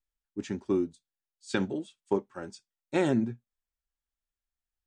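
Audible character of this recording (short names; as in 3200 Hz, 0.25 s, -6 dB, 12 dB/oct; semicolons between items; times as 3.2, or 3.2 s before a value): noise floor -93 dBFS; spectral tilt -6.0 dB/oct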